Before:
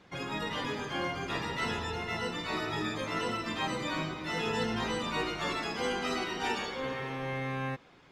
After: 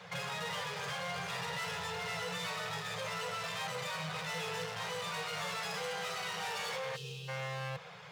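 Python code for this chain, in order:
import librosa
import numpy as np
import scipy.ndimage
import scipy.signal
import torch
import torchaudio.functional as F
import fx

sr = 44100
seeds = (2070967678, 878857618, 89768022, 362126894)

p1 = fx.over_compress(x, sr, threshold_db=-40.0, ratio=-0.5)
p2 = x + F.gain(torch.from_numpy(p1), -1.0).numpy()
p3 = np.clip(p2, -10.0 ** (-35.5 / 20.0), 10.0 ** (-35.5 / 20.0))
p4 = scipy.signal.sosfilt(scipy.signal.butter(4, 110.0, 'highpass', fs=sr, output='sos'), p3)
p5 = fx.spec_box(p4, sr, start_s=6.96, length_s=0.32, low_hz=500.0, high_hz=2400.0, gain_db=-25)
y = scipy.signal.sosfilt(scipy.signal.ellip(3, 1.0, 40, [180.0, 450.0], 'bandstop', fs=sr, output='sos'), p5)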